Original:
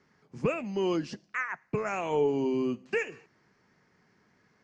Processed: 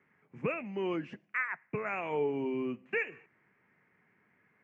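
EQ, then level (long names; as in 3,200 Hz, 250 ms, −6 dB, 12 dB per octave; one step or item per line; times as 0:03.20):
high-pass filter 81 Hz
high shelf with overshoot 3,300 Hz −13 dB, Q 3
−5.5 dB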